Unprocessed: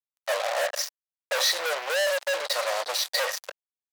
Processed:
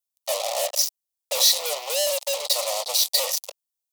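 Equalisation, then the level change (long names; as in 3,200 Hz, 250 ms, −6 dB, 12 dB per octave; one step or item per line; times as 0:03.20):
high-shelf EQ 2,500 Hz +8.5 dB
high-shelf EQ 7,700 Hz +4.5 dB
phaser with its sweep stopped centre 660 Hz, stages 4
0.0 dB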